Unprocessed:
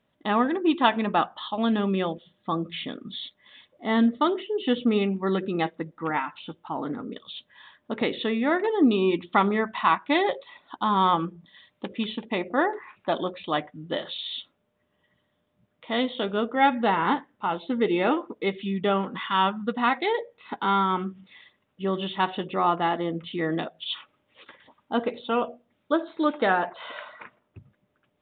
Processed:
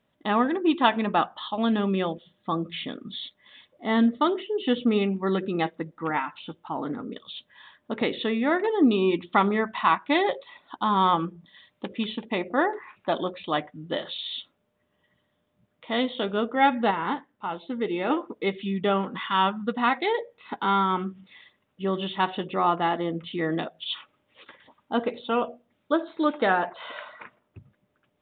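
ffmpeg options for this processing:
ffmpeg -i in.wav -filter_complex "[0:a]asplit=3[link_01][link_02][link_03];[link_01]atrim=end=16.912[link_04];[link_02]atrim=start=16.908:end=18.102,asetpts=PTS-STARTPTS,volume=-4.5dB[link_05];[link_03]atrim=start=18.098[link_06];[link_04][link_05]acrossfade=duration=0.004:curve1=hsin:curve2=hsin[link_07];[link_07][link_06]acrossfade=duration=0.004:curve1=hsin:curve2=hsin" out.wav

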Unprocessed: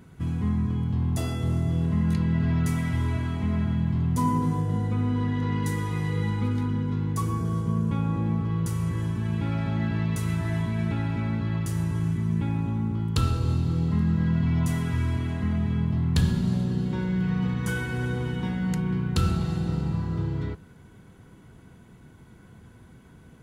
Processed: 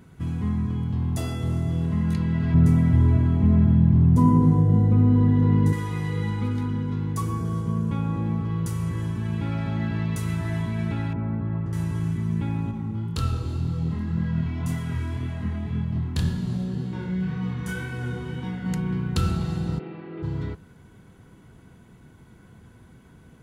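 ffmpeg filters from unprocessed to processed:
ffmpeg -i in.wav -filter_complex "[0:a]asettb=1/sr,asplit=3[link_01][link_02][link_03];[link_01]atrim=end=2.544[link_04];[link_02]atrim=start=2.54:end=5.73,asetpts=PTS-STARTPTS,afade=type=in:duration=0.004:curve=qsin,afade=type=out:start_time=3.186:duration=0.004:curve=qsin,tiltshelf=frequency=970:gain=8.5[link_05];[link_03]atrim=start=5.726[link_06];[link_04][link_05]acrossfade=duration=0.004:curve1=hsin:curve2=qsin[link_07];[link_07][link_06]acrossfade=duration=0.004:curve1=qsin:curve2=hsin,asettb=1/sr,asplit=3[link_08][link_09][link_10];[link_08]atrim=end=11.134[link_11];[link_09]atrim=start=11.13:end=11.73,asetpts=PTS-STARTPTS,afade=type=in:duration=0.004:curve=qsin,afade=type=out:start_time=0.596:duration=0.004:curve=qsin,lowpass=1200[link_12];[link_10]atrim=start=11.726[link_13];[link_11][link_12]acrossfade=duration=0.004:curve1=hsin:curve2=qsin[link_14];[link_14][link_13]acrossfade=duration=0.004:curve1=qsin:curve2=hsin,asettb=1/sr,asplit=3[link_15][link_16][link_17];[link_15]atrim=end=12.714[link_18];[link_16]atrim=start=12.71:end=18.66,asetpts=PTS-STARTPTS,afade=type=in:duration=0.004:curve=qsin,afade=type=out:start_time=5.946:duration=0.004:curve=qsin,flanger=delay=22.5:depth=5:speed=1.9[link_19];[link_17]atrim=start=18.656[link_20];[link_18][link_19]acrossfade=duration=0.004:curve1=hsin:curve2=qsin[link_21];[link_21][link_20]acrossfade=duration=0.004:curve1=qsin:curve2=hsin,asplit=3[link_22][link_23][link_24];[link_22]afade=type=out:start_time=19.78:duration=0.02[link_25];[link_23]highpass=frequency=230:width=0.5412,highpass=frequency=230:width=1.3066,equalizer=frequency=240:width_type=q:width=4:gain=-10,equalizer=frequency=350:width_type=q:width=4:gain=6,equalizer=frequency=990:width_type=q:width=4:gain=-9,equalizer=frequency=1500:width_type=q:width=4:gain=-3,equalizer=frequency=2300:width_type=q:width=4:gain=5,lowpass=frequency=2900:width=0.5412,lowpass=frequency=2900:width=1.3066,afade=type=in:start_time=19.78:duration=0.02,afade=type=out:start_time=20.22:duration=0.02[link_26];[link_24]afade=type=in:start_time=20.22:duration=0.02[link_27];[link_25][link_26][link_27]amix=inputs=3:normalize=0" out.wav

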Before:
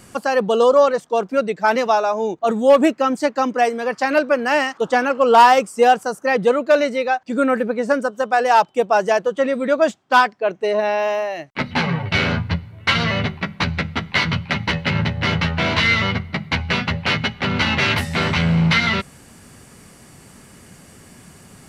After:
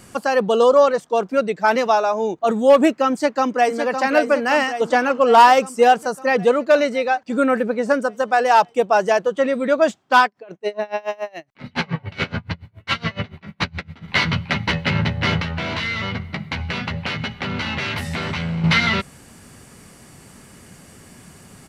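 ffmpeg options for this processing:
ffmpeg -i in.wav -filter_complex "[0:a]asplit=2[link_01][link_02];[link_02]afade=type=in:start_time=3.12:duration=0.01,afade=type=out:start_time=3.78:duration=0.01,aecho=0:1:560|1120|1680|2240|2800|3360|3920|4480|5040:0.446684|0.290344|0.188724|0.12267|0.0797358|0.0518283|0.0336884|0.0218974|0.0142333[link_03];[link_01][link_03]amix=inputs=2:normalize=0,asettb=1/sr,asplit=3[link_04][link_05][link_06];[link_04]atrim=end=10.254[link_07];[link_05]atrim=start=10.25:end=14.08,asetpts=PTS-STARTPTS,afade=type=in:duration=0.004:curve=qsin,afade=type=out:start_time=3.826:duration=0.004:curve=qsin,aeval=exprs='val(0)*pow(10,-27*(0.5-0.5*cos(2*PI*7.1*n/s))/20)':channel_layout=same[link_08];[link_06]atrim=start=14.076[link_09];[link_07][link_08]acrossfade=duration=0.004:curve1=hsin:curve2=qsin[link_10];[link_10][link_09]acrossfade=duration=0.004:curve1=qsin:curve2=hsin,asettb=1/sr,asplit=3[link_11][link_12][link_13];[link_11]atrim=end=15.414[link_14];[link_12]atrim=start=15.41:end=18.64,asetpts=PTS-STARTPTS,afade=type=in:duration=0.004:curve=qsin,afade=type=out:start_time=3.226:duration=0.004:curve=qsin,acompressor=threshold=-21dB:ratio=6:attack=3.2:release=140:knee=1:detection=peak[link_15];[link_13]atrim=start=18.636[link_16];[link_14][link_15]acrossfade=duration=0.004:curve1=hsin:curve2=qsin[link_17];[link_17][link_16]acrossfade=duration=0.004:curve1=qsin:curve2=hsin" out.wav

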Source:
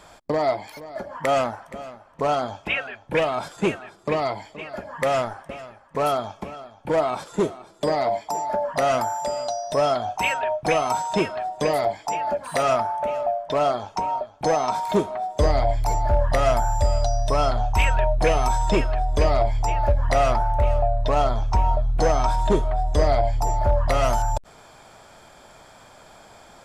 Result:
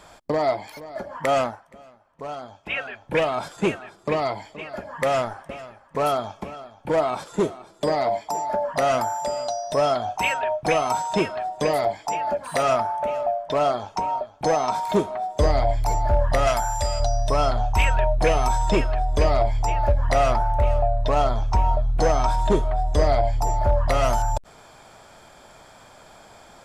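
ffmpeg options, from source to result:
ffmpeg -i in.wav -filter_complex "[0:a]asettb=1/sr,asplit=3[link_01][link_02][link_03];[link_01]atrim=end=16.474[link_04];[link_02]atrim=start=16.47:end=17,asetpts=PTS-STARTPTS,afade=type=in:duration=0.004:curve=qsin,afade=type=out:start_time=0.526:duration=0.004:curve=qsin,tiltshelf=frequency=940:gain=-6[link_05];[link_03]atrim=start=16.996[link_06];[link_04][link_05]acrossfade=duration=0.004:curve1=hsin:curve2=qsin[link_07];[link_07][link_06]acrossfade=duration=0.004:curve1=qsin:curve2=hsin,asplit=3[link_08][link_09][link_10];[link_08]atrim=end=1.62,asetpts=PTS-STARTPTS,afade=type=out:start_time=1.44:duration=0.18:silence=0.281838[link_11];[link_09]atrim=start=1.62:end=2.63,asetpts=PTS-STARTPTS,volume=-11dB[link_12];[link_10]atrim=start=2.63,asetpts=PTS-STARTPTS,afade=type=in:duration=0.18:silence=0.281838[link_13];[link_11][link_12][link_13]concat=n=3:v=0:a=1" out.wav

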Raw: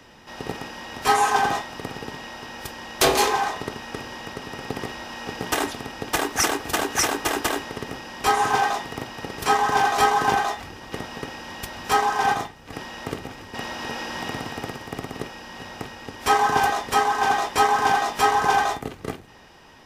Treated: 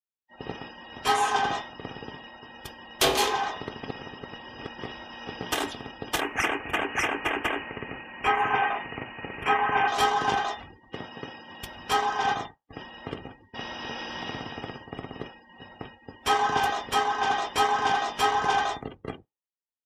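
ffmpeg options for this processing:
ffmpeg -i in.wav -filter_complex "[0:a]asettb=1/sr,asplit=3[link_01][link_02][link_03];[link_01]atrim=end=6.204[link_04];[link_02]atrim=start=6.2:end=9.88,asetpts=PTS-STARTPTS,afade=type=in:duration=0.004:curve=qsin,afade=type=out:start_time=3.676:duration=0.004:curve=qsin,highshelf=frequency=3100:width_type=q:width=3:gain=-8.5[link_05];[link_03]atrim=start=9.876[link_06];[link_04][link_05]acrossfade=duration=0.004:curve1=hsin:curve2=qsin[link_07];[link_07][link_06]acrossfade=duration=0.004:curve1=qsin:curve2=hsin,asettb=1/sr,asplit=3[link_08][link_09][link_10];[link_08]atrim=end=10.934[link_11];[link_09]atrim=start=10.93:end=11.61,asetpts=PTS-STARTPTS,afade=type=in:duration=0.004:curve=qsin,afade=type=out:start_time=0.676:duration=0.004:curve=qsin,highpass=83[link_12];[link_10]atrim=start=11.606[link_13];[link_11][link_12]acrossfade=duration=0.004:curve1=hsin:curve2=qsin[link_14];[link_14][link_13]acrossfade=duration=0.004:curve1=qsin:curve2=hsin,asplit=3[link_15][link_16][link_17];[link_15]atrim=end=3.832[link_18];[link_16]atrim=start=3.828:end=4.782,asetpts=PTS-STARTPTS,areverse[link_19];[link_17]atrim=start=4.778[link_20];[link_18][link_19]acrossfade=duration=0.004:curve1=hsin:curve2=hsin[link_21];[link_21][link_20]acrossfade=duration=0.004:curve1=hsin:curve2=hsin,agate=range=-33dB:threshold=-34dB:ratio=3:detection=peak,afftdn=noise_reduction=31:noise_floor=-41,equalizer=frequency=3200:width=2.9:gain=6.5,volume=-5dB" out.wav

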